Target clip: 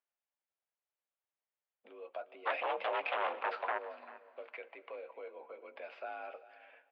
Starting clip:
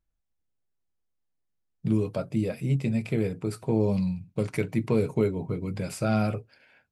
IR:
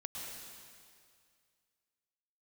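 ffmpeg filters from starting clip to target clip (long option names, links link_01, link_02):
-filter_complex "[0:a]alimiter=limit=-22dB:level=0:latency=1:release=304,acompressor=threshold=-39dB:ratio=1.5,asplit=3[link_01][link_02][link_03];[link_01]afade=type=out:start_time=2.45:duration=0.02[link_04];[link_02]aeval=exprs='0.0562*sin(PI/2*4.47*val(0)/0.0562)':channel_layout=same,afade=type=in:start_time=2.45:duration=0.02,afade=type=out:start_time=3.77:duration=0.02[link_05];[link_03]afade=type=in:start_time=3.77:duration=0.02[link_06];[link_04][link_05][link_06]amix=inputs=3:normalize=0,aecho=1:1:393:0.133,asplit=2[link_07][link_08];[1:a]atrim=start_sample=2205,adelay=15[link_09];[link_08][link_09]afir=irnorm=-1:irlink=0,volume=-16.5dB[link_10];[link_07][link_10]amix=inputs=2:normalize=0,highpass=frequency=480:width_type=q:width=0.5412,highpass=frequency=480:width_type=q:width=1.307,lowpass=frequency=3200:width_type=q:width=0.5176,lowpass=frequency=3200:width_type=q:width=0.7071,lowpass=frequency=3200:width_type=q:width=1.932,afreqshift=56,volume=-2dB"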